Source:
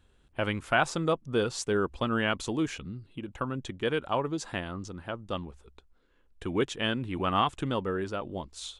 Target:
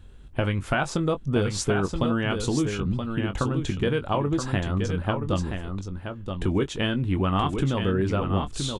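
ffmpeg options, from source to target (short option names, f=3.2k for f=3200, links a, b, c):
-filter_complex "[0:a]lowshelf=f=230:g=11,acompressor=threshold=-29dB:ratio=4,asplit=2[a][b];[b]adelay=21,volume=-10dB[c];[a][c]amix=inputs=2:normalize=0,asplit=2[d][e];[e]aecho=0:1:975:0.473[f];[d][f]amix=inputs=2:normalize=0,volume=7dB"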